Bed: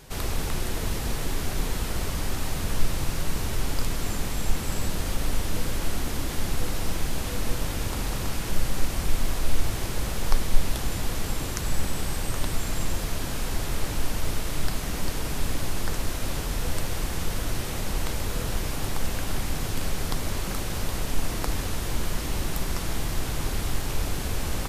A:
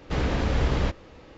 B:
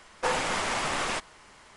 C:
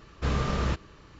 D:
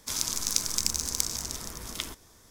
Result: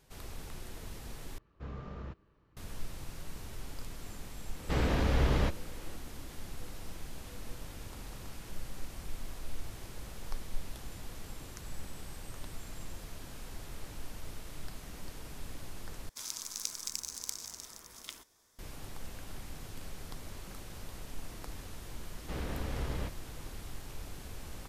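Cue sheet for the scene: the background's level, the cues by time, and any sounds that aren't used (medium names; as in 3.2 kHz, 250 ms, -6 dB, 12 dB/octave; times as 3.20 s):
bed -16.5 dB
1.38 s: replace with C -15.5 dB + low-pass 1.2 kHz 6 dB/octave
4.59 s: add A -4 dB
16.09 s: replace with D -10.5 dB + bass shelf 310 Hz -10.5 dB
22.18 s: add A -13 dB
not used: B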